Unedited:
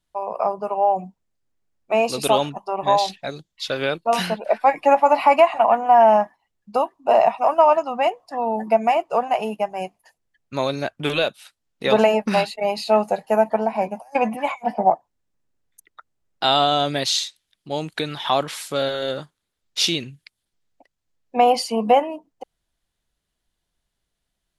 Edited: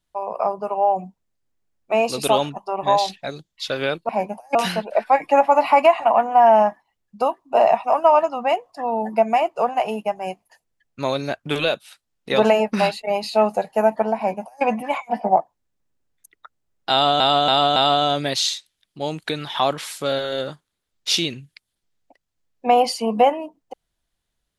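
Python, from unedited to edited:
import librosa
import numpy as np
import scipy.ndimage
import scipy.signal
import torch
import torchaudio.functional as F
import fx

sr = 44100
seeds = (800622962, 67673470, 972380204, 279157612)

y = fx.edit(x, sr, fx.duplicate(start_s=13.71, length_s=0.46, to_s=4.09),
    fx.repeat(start_s=16.46, length_s=0.28, count=4), tone=tone)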